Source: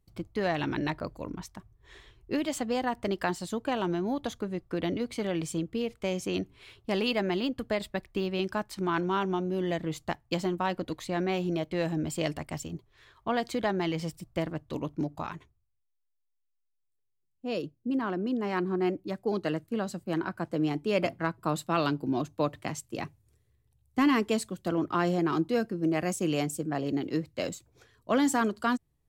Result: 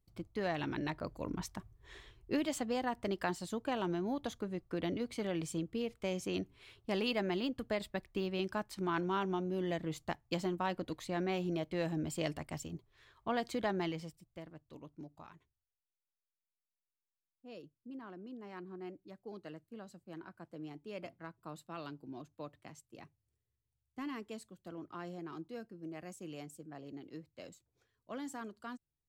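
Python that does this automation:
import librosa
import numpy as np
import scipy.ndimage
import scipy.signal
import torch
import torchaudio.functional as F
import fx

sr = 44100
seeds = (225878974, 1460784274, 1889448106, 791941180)

y = fx.gain(x, sr, db=fx.line((0.92, -7.0), (1.48, 1.0), (2.75, -6.0), (13.84, -6.0), (14.25, -18.0)))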